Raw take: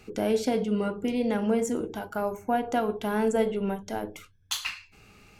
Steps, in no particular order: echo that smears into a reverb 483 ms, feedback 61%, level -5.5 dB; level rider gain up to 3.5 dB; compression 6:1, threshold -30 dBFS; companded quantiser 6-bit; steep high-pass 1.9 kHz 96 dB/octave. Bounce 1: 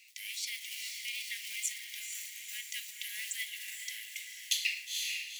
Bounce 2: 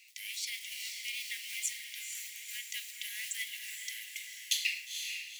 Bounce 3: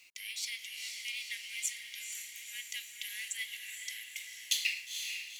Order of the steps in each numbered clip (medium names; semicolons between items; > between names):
echo that smears into a reverb > companded quantiser > steep high-pass > compression > level rider; companded quantiser > steep high-pass > compression > echo that smears into a reverb > level rider; steep high-pass > compression > echo that smears into a reverb > level rider > companded quantiser